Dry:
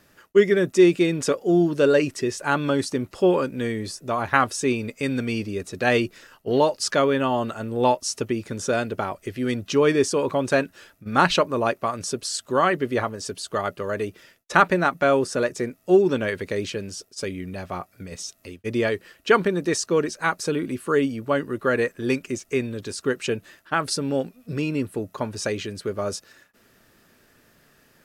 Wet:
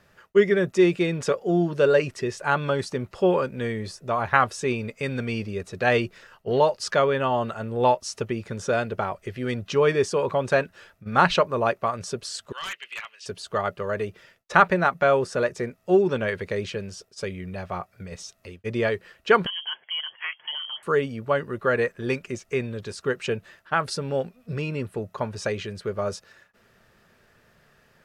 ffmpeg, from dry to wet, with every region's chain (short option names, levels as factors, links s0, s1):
-filter_complex "[0:a]asettb=1/sr,asplit=3[s0][s1][s2];[s0]atrim=end=12.524[s3];[s1]atrim=start=12.52:end=13.26,asetpts=PTS-STARTPTS,afade=t=in:d=0.004:c=qsin,afade=t=out:st=0.736:d=0.004:c=qsin,highpass=f=2700:t=q:w=4.7,highshelf=f=4700:g=-10.5,aeval=exprs='0.0562*(abs(mod(val(0)/0.0562+3,4)-2)-1)':c=same[s4];[s2]atrim=start=13.256[s5];[s3][s4]acrossfade=d=0.004:c1=hsin:c2=qsin[s6];[s6][s5]acrossfade=d=0.004:c1=qsin:c2=hsin,asettb=1/sr,asplit=3[s7][s8][s9];[s7]atrim=end=19.464[s10];[s8]atrim=start=19.46:end=20.83,asetpts=PTS-STARTPTS,afade=t=in:d=0.004:c=qsin,afade=t=out:st=1.366:d=0.004:c=qsin,acompressor=threshold=0.0282:ratio=2:attack=3.2:release=140:knee=1:detection=peak,lowpass=f=2900:t=q:w=0.5098,lowpass=f=2900:t=q:w=0.6013,lowpass=f=2900:t=q:w=0.9,lowpass=f=2900:t=q:w=2.563,afreqshift=-3400,highpass=190[s11];[s9]atrim=start=20.826[s12];[s10][s11]acrossfade=d=0.004:c1=hsin:c2=qsin[s13];[s13][s12]acrossfade=d=0.004:c1=qsin:c2=hsin,lowpass=f=2900:p=1,equalizer=f=290:t=o:w=0.44:g=-12.5,volume=1.12"